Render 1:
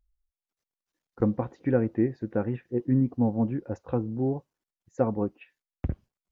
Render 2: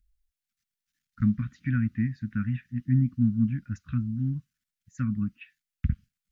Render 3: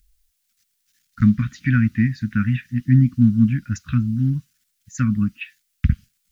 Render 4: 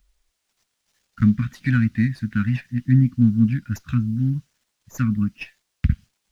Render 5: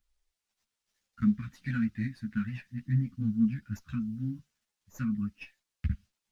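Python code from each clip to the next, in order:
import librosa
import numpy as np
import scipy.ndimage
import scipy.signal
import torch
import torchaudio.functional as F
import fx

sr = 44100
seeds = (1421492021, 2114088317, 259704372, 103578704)

y1 = scipy.signal.sosfilt(scipy.signal.cheby2(4, 40, [350.0, 930.0], 'bandstop', fs=sr, output='sos'), x)
y1 = F.gain(torch.from_numpy(y1), 4.0).numpy()
y2 = fx.high_shelf(y1, sr, hz=2400.0, db=11.5)
y2 = F.gain(torch.from_numpy(y2), 8.5).numpy()
y3 = fx.running_max(y2, sr, window=3)
y3 = F.gain(torch.from_numpy(y3), -1.5).numpy()
y4 = fx.ensemble(y3, sr)
y4 = F.gain(torch.from_numpy(y4), -8.5).numpy()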